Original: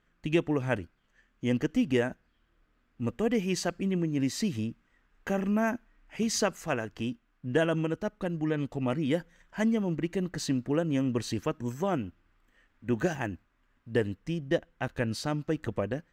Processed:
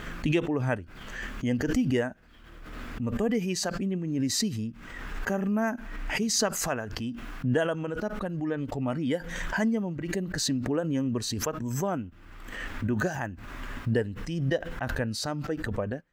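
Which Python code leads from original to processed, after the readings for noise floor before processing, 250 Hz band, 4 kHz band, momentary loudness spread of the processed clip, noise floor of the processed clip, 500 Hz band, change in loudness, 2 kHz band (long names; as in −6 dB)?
−71 dBFS, +0.5 dB, +5.0 dB, 11 LU, −48 dBFS, 0.0 dB, +1.0 dB, +3.0 dB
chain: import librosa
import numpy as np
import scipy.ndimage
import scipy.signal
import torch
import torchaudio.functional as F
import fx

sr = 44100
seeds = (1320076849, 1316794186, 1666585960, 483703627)

y = fx.noise_reduce_blind(x, sr, reduce_db=7)
y = fx.pre_swell(y, sr, db_per_s=36.0)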